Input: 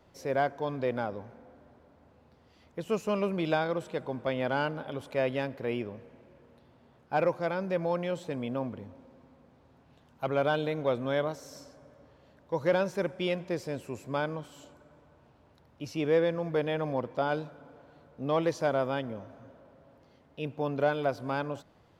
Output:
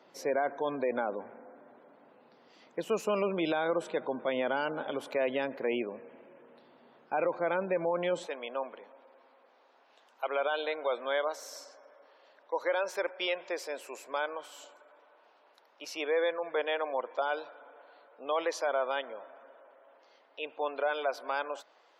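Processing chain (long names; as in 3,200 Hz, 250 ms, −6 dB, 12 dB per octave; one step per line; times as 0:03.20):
Bessel high-pass filter 320 Hz, order 4, from 0:08.25 680 Hz
gate on every frequency bin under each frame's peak −30 dB strong
brickwall limiter −25.5 dBFS, peak gain reduction 9 dB
level +4.5 dB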